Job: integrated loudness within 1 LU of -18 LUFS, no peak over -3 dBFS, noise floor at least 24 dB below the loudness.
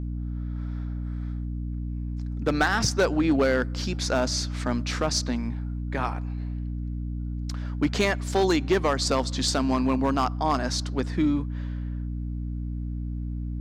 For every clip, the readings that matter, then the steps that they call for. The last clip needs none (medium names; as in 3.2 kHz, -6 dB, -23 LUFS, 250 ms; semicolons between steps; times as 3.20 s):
clipped samples 0.6%; clipping level -15.0 dBFS; hum 60 Hz; highest harmonic 300 Hz; hum level -28 dBFS; loudness -27.0 LUFS; peak level -15.0 dBFS; loudness target -18.0 LUFS
-> clip repair -15 dBFS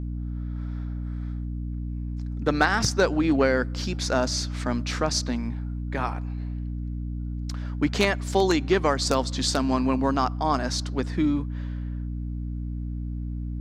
clipped samples 0.0%; hum 60 Hz; highest harmonic 300 Hz; hum level -28 dBFS
-> de-hum 60 Hz, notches 5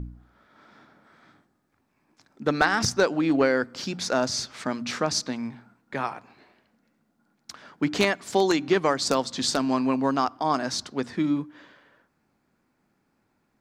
hum not found; loudness -25.5 LUFS; peak level -6.0 dBFS; loudness target -18.0 LUFS
-> trim +7.5 dB; peak limiter -3 dBFS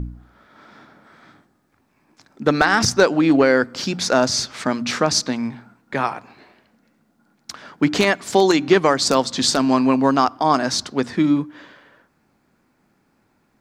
loudness -18.5 LUFS; peak level -3.0 dBFS; noise floor -64 dBFS